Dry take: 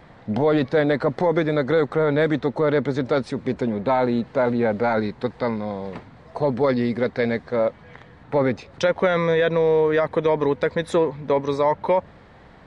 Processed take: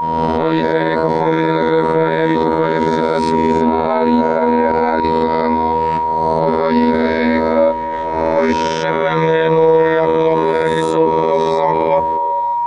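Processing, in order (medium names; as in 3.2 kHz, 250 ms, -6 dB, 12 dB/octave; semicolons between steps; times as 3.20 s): reverse spectral sustain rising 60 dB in 1.03 s; gate -38 dBFS, range -11 dB; robot voice 80.6 Hz; 4.40–5.04 s: level held to a coarse grid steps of 12 dB; whistle 950 Hz -26 dBFS; 6.91–8.53 s: doubling 28 ms -4.5 dB; repeats whose band climbs or falls 135 ms, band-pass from 200 Hz, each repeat 0.7 oct, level -11.5 dB; loudness maximiser +11.5 dB; trim -1 dB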